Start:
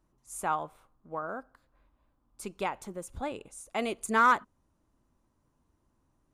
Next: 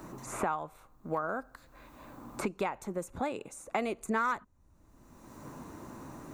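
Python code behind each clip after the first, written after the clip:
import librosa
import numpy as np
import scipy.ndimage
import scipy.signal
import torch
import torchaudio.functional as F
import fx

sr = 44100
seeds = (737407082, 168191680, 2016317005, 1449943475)

y = fx.graphic_eq_31(x, sr, hz=(3150, 5000, 10000), db=(-9, -6, -8))
y = fx.band_squash(y, sr, depth_pct=100)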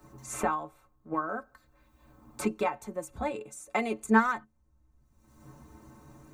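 y = fx.stiff_resonator(x, sr, f0_hz=65.0, decay_s=0.24, stiffness=0.03)
y = fx.band_widen(y, sr, depth_pct=70)
y = y * 10.0 ** (8.0 / 20.0)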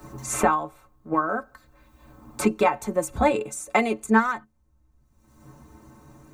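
y = fx.rider(x, sr, range_db=5, speed_s=0.5)
y = y * 10.0 ** (8.0 / 20.0)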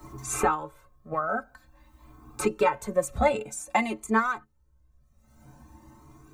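y = fx.comb_cascade(x, sr, direction='rising', hz=0.5)
y = y * 10.0 ** (1.5 / 20.0)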